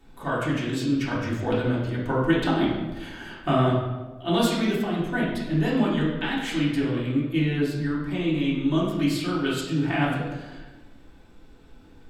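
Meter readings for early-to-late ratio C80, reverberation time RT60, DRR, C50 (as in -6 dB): 4.5 dB, 1.2 s, -7.0 dB, 1.5 dB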